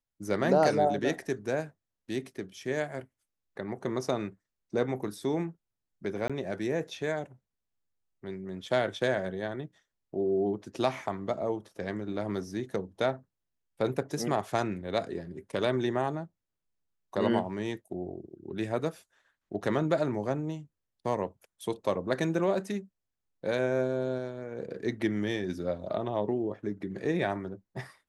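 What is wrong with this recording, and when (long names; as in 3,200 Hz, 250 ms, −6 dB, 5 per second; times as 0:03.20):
0:06.28–0:06.30: drop-out 16 ms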